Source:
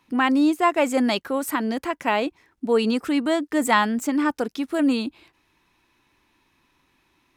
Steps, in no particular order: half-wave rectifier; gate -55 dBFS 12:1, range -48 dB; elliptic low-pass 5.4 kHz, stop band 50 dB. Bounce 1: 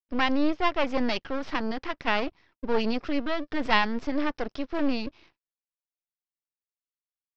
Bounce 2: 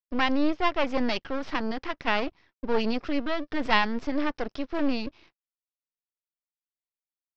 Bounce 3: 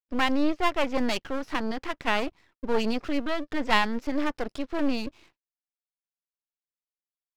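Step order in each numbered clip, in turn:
gate > half-wave rectifier > elliptic low-pass; half-wave rectifier > elliptic low-pass > gate; elliptic low-pass > gate > half-wave rectifier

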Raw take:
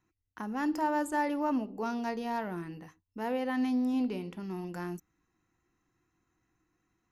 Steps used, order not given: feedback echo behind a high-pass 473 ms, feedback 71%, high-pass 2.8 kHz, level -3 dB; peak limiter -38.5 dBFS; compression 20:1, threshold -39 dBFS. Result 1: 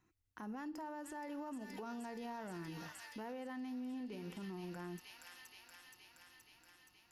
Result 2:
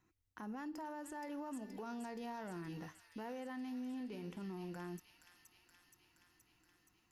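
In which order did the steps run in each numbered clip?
feedback echo behind a high-pass > compression > peak limiter; compression > peak limiter > feedback echo behind a high-pass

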